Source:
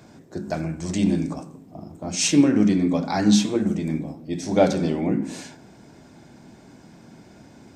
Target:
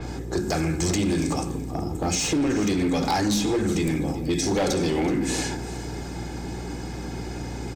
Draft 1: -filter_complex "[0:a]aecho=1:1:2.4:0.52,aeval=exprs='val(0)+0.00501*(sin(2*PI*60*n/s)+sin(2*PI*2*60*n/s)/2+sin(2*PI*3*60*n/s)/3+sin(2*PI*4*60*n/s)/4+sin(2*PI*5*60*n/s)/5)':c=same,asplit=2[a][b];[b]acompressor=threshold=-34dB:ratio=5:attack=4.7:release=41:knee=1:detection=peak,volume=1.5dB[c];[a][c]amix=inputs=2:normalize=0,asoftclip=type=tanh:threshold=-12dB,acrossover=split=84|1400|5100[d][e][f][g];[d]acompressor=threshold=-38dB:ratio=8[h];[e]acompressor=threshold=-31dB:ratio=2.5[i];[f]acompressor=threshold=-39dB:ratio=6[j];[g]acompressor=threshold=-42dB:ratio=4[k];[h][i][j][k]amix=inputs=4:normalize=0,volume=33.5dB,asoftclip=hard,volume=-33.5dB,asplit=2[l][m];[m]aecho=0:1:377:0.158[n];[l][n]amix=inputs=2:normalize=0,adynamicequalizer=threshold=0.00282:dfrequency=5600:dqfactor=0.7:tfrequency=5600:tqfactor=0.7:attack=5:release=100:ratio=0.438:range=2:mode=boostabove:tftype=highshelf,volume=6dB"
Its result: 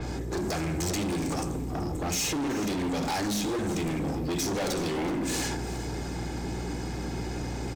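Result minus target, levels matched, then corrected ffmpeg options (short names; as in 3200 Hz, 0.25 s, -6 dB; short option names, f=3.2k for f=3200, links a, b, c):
overloaded stage: distortion +11 dB; compressor: peak gain reduction +6 dB
-filter_complex "[0:a]aecho=1:1:2.4:0.52,aeval=exprs='val(0)+0.00501*(sin(2*PI*60*n/s)+sin(2*PI*2*60*n/s)/2+sin(2*PI*3*60*n/s)/3+sin(2*PI*4*60*n/s)/4+sin(2*PI*5*60*n/s)/5)':c=same,asplit=2[a][b];[b]acompressor=threshold=-26.5dB:ratio=5:attack=4.7:release=41:knee=1:detection=peak,volume=1.5dB[c];[a][c]amix=inputs=2:normalize=0,asoftclip=type=tanh:threshold=-12dB,acrossover=split=84|1400|5100[d][e][f][g];[d]acompressor=threshold=-38dB:ratio=8[h];[e]acompressor=threshold=-31dB:ratio=2.5[i];[f]acompressor=threshold=-39dB:ratio=6[j];[g]acompressor=threshold=-42dB:ratio=4[k];[h][i][j][k]amix=inputs=4:normalize=0,volume=24dB,asoftclip=hard,volume=-24dB,asplit=2[l][m];[m]aecho=0:1:377:0.158[n];[l][n]amix=inputs=2:normalize=0,adynamicequalizer=threshold=0.00282:dfrequency=5600:dqfactor=0.7:tfrequency=5600:tqfactor=0.7:attack=5:release=100:ratio=0.438:range=2:mode=boostabove:tftype=highshelf,volume=6dB"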